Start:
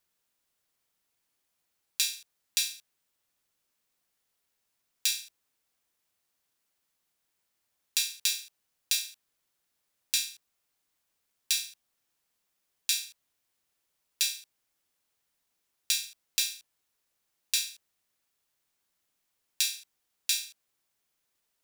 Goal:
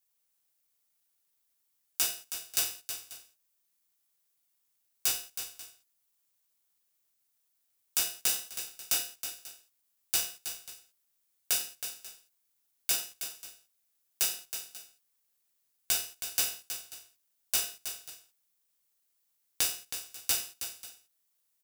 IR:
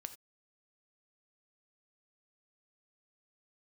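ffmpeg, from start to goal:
-filter_complex "[0:a]aderivative,asplit=2[a][b];[b]adelay=14,volume=-3dB[c];[a][c]amix=inputs=2:normalize=0,aecho=1:1:76|320|539:0.106|0.335|0.119,aeval=exprs='val(0)*sgn(sin(2*PI*1100*n/s))':c=same,volume=-2dB"

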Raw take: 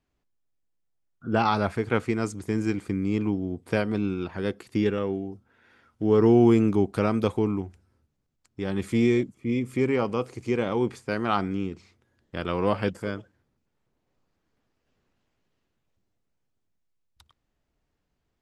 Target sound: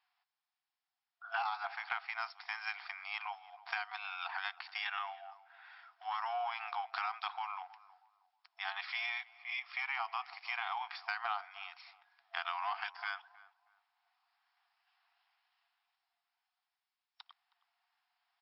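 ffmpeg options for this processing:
-filter_complex "[0:a]acontrast=49,afftfilt=real='re*between(b*sr/4096,680,5500)':imag='im*between(b*sr/4096,680,5500)':win_size=4096:overlap=0.75,acompressor=threshold=-32dB:ratio=8,asplit=2[a][b];[b]adelay=317,lowpass=f=940:p=1,volume=-15.5dB,asplit=2[c][d];[d]adelay=317,lowpass=f=940:p=1,volume=0.36,asplit=2[e][f];[f]adelay=317,lowpass=f=940:p=1,volume=0.36[g];[a][c][e][g]amix=inputs=4:normalize=0,volume=-2dB"

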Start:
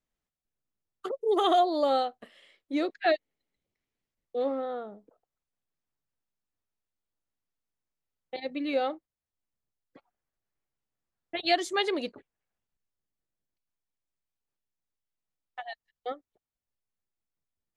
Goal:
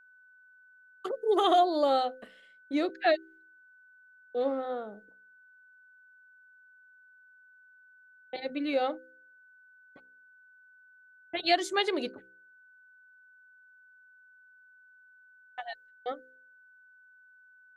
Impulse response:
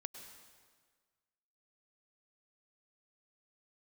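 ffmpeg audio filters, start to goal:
-af "agate=range=-33dB:threshold=-52dB:ratio=3:detection=peak,aeval=exprs='val(0)+0.00158*sin(2*PI*1500*n/s)':c=same,bandreject=f=64.59:t=h:w=4,bandreject=f=129.18:t=h:w=4,bandreject=f=193.77:t=h:w=4,bandreject=f=258.36:t=h:w=4,bandreject=f=322.95:t=h:w=4,bandreject=f=387.54:t=h:w=4,bandreject=f=452.13:t=h:w=4,bandreject=f=516.72:t=h:w=4"

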